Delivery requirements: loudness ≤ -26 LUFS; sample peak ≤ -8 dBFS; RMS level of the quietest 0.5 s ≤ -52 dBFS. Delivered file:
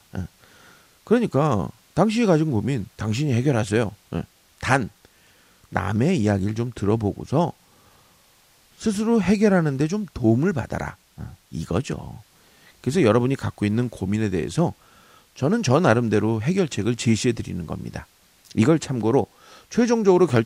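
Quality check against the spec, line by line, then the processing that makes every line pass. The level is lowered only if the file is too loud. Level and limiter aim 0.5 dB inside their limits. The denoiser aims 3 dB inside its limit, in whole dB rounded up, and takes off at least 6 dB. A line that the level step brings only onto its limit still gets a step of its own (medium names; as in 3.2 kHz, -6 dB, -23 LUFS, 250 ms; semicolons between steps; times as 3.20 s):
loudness -22.5 LUFS: fail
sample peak -3.5 dBFS: fail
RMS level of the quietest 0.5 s -57 dBFS: pass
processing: trim -4 dB; peak limiter -8.5 dBFS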